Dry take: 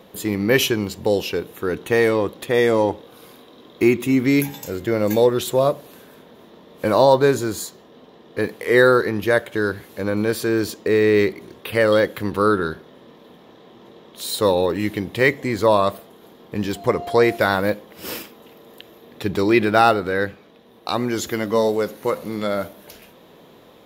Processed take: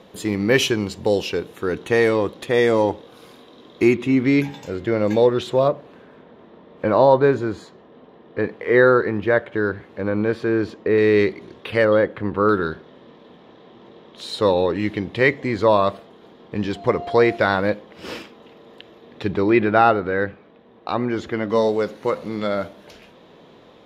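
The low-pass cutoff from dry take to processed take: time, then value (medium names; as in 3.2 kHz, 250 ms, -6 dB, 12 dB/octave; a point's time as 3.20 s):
8 kHz
from 3.95 s 3.9 kHz
from 5.68 s 2.3 kHz
from 10.98 s 4.8 kHz
from 11.85 s 1.9 kHz
from 12.49 s 4.3 kHz
from 19.35 s 2.4 kHz
from 21.50 s 5.2 kHz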